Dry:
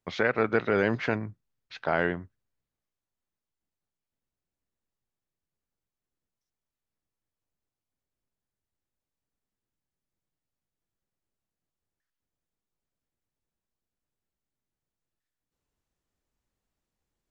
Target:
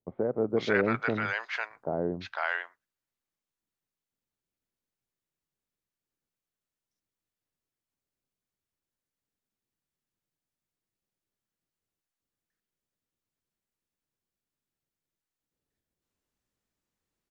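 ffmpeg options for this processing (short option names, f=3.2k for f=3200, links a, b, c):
-filter_complex "[0:a]lowshelf=f=74:g=-10.5,acrossover=split=760[a][b];[b]adelay=500[c];[a][c]amix=inputs=2:normalize=0"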